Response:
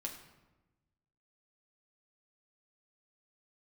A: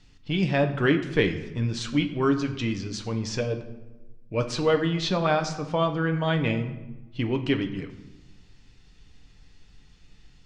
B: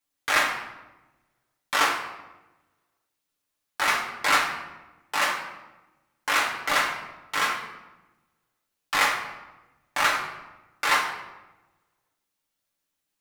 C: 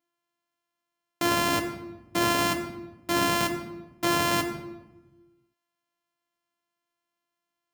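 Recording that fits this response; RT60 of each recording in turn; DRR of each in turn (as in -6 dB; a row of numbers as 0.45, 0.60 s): C; 1.1, 1.1, 1.1 s; 5.0, -3.5, 1.0 dB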